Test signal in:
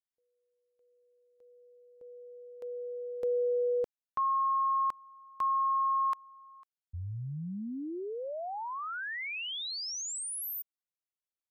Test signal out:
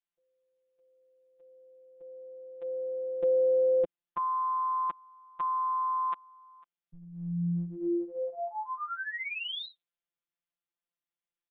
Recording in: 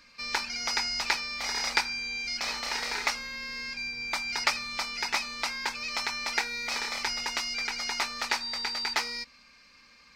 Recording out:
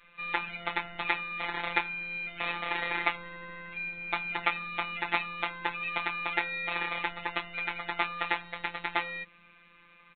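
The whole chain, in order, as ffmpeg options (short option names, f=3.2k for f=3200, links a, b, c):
-filter_complex "[0:a]adynamicequalizer=threshold=0.002:dfrequency=260:dqfactor=1.2:tfrequency=260:tqfactor=1.2:attack=5:release=100:ratio=0.375:range=4:mode=boostabove:tftype=bell,asplit=2[a][b];[b]alimiter=limit=-15dB:level=0:latency=1:release=380,volume=-2.5dB[c];[a][c]amix=inputs=2:normalize=0,afftfilt=real='hypot(re,im)*cos(PI*b)':imag='0':win_size=1024:overlap=0.75,aresample=8000,aresample=44100"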